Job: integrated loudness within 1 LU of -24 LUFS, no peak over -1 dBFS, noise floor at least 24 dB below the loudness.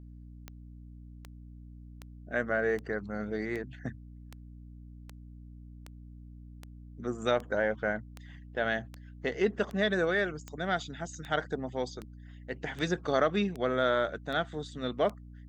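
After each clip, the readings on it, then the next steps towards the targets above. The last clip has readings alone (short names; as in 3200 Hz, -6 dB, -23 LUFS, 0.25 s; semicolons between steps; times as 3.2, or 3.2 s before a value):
clicks 20; hum 60 Hz; harmonics up to 300 Hz; hum level -46 dBFS; loudness -32.0 LUFS; peak -14.5 dBFS; loudness target -24.0 LUFS
-> de-click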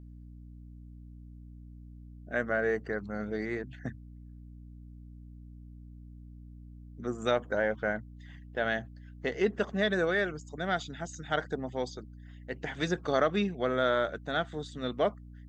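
clicks 0; hum 60 Hz; harmonics up to 300 Hz; hum level -46 dBFS
-> notches 60/120/180/240/300 Hz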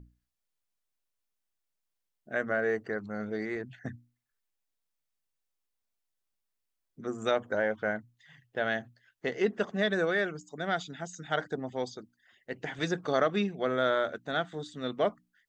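hum none; loudness -32.0 LUFS; peak -14.5 dBFS; loudness target -24.0 LUFS
-> gain +8 dB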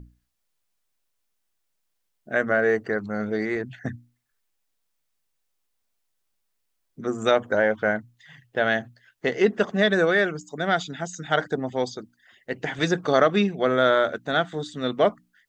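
loudness -24.0 LUFS; peak -6.5 dBFS; noise floor -75 dBFS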